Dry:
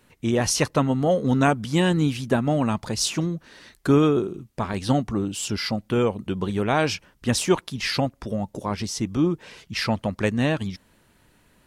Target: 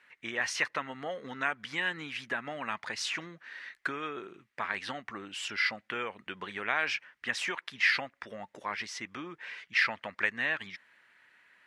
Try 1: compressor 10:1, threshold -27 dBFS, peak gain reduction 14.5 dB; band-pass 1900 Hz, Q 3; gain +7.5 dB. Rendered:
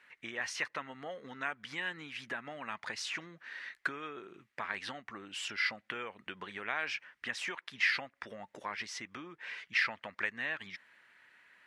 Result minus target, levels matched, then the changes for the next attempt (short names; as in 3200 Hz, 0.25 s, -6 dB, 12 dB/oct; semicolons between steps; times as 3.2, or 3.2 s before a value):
compressor: peak gain reduction +6 dB
change: compressor 10:1, threshold -20.5 dBFS, peak gain reduction 8.5 dB